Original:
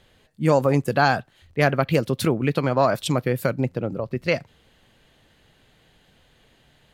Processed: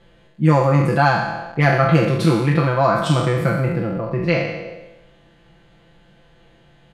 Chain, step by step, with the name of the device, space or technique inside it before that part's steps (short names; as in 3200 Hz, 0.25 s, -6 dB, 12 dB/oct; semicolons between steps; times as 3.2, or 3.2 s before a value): spectral trails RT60 1.03 s; LPF 9900 Hz 12 dB/oct; through cloth (high shelf 2500 Hz -12 dB); comb 5.9 ms, depth 93%; dynamic EQ 510 Hz, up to -7 dB, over -29 dBFS, Q 1.2; gain +2.5 dB